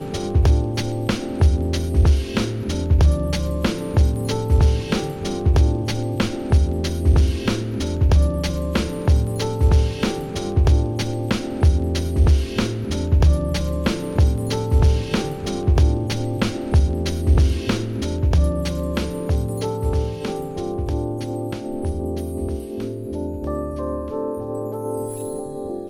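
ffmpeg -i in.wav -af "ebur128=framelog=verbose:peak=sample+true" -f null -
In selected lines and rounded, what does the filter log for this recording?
Integrated loudness:
  I:         -21.4 LUFS
  Threshold: -31.4 LUFS
Loudness range:
  LRA:         6.9 LU
  Threshold: -41.3 LUFS
  LRA low:   -26.9 LUFS
  LRA high:  -20.0 LUFS
Sample peak:
  Peak:       -5.7 dBFS
True peak:
  Peak:       -5.7 dBFS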